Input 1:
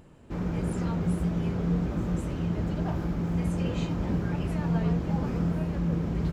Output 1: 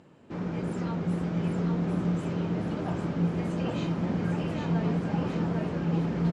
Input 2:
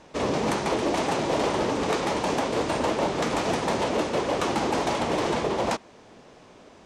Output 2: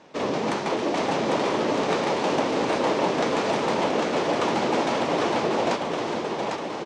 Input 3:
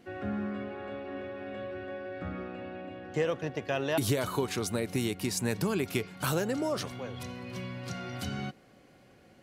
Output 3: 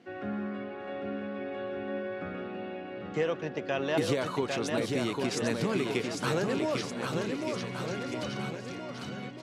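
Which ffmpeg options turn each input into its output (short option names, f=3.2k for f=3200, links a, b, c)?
-af "highpass=150,lowpass=6k,aecho=1:1:800|1520|2168|2751|3276:0.631|0.398|0.251|0.158|0.1"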